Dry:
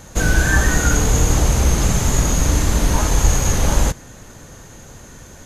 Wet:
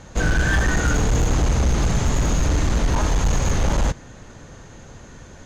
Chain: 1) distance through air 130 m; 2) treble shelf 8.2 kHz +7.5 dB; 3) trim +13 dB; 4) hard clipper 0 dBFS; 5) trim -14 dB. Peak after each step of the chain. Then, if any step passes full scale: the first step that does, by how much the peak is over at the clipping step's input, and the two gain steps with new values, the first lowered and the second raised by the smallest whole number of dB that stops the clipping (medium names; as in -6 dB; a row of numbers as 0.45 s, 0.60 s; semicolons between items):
-3.0 dBFS, -3.0 dBFS, +10.0 dBFS, 0.0 dBFS, -14.0 dBFS; step 3, 10.0 dB; step 3 +3 dB, step 5 -4 dB